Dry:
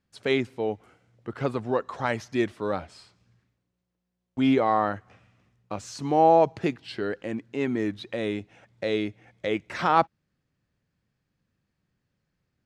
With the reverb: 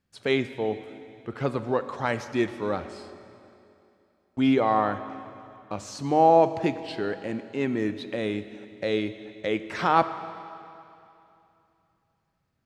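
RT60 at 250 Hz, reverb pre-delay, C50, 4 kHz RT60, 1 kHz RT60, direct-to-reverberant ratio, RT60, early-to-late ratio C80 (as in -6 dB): 2.8 s, 21 ms, 12.0 dB, 2.6 s, 2.8 s, 11.0 dB, 2.8 s, 12.5 dB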